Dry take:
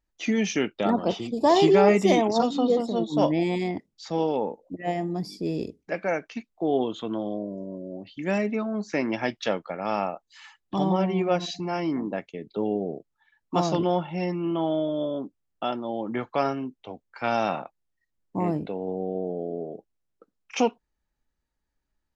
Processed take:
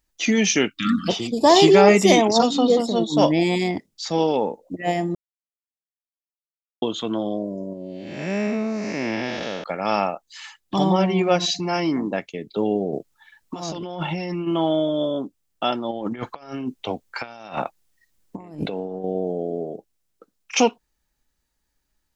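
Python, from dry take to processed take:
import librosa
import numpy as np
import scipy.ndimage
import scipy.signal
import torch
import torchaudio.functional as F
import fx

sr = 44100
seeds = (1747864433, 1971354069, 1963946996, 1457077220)

y = fx.spec_erase(x, sr, start_s=0.69, length_s=0.4, low_hz=310.0, high_hz=1100.0)
y = fx.spec_blur(y, sr, span_ms=296.0, at=(7.73, 9.64))
y = fx.over_compress(y, sr, threshold_db=-33.0, ratio=-1.0, at=(12.92, 14.46), fade=0.02)
y = fx.over_compress(y, sr, threshold_db=-34.0, ratio=-0.5, at=(15.91, 19.04))
y = fx.edit(y, sr, fx.silence(start_s=5.15, length_s=1.67), tone=tone)
y = fx.high_shelf(y, sr, hz=3000.0, db=10.0)
y = F.gain(torch.from_numpy(y), 4.5).numpy()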